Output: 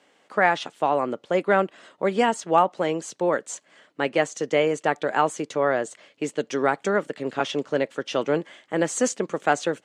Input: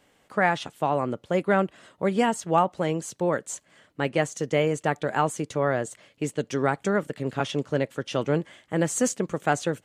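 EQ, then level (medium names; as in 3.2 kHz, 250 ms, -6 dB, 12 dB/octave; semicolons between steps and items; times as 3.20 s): band-pass 270–7200 Hz; +3.0 dB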